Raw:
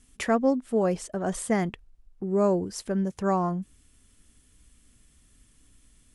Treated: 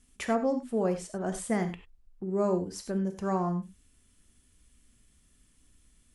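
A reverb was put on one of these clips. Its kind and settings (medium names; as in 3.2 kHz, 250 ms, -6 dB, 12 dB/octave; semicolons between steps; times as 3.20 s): gated-style reverb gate 120 ms flat, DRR 7 dB; trim -5 dB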